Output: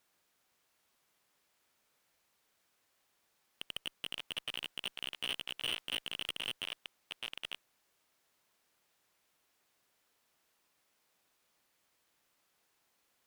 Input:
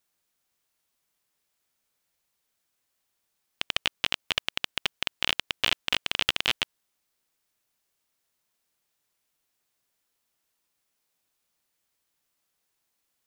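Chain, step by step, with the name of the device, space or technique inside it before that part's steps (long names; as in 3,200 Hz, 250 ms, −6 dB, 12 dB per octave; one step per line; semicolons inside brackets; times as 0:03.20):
delay that plays each chunk backwards 687 ms, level −13 dB
0:04.47–0:06.12: double-tracking delay 15 ms −5 dB
tube preamp driven hard (tube saturation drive 33 dB, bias 0.25; low-shelf EQ 180 Hz −7 dB; high-shelf EQ 3,800 Hz −8 dB)
level +7.5 dB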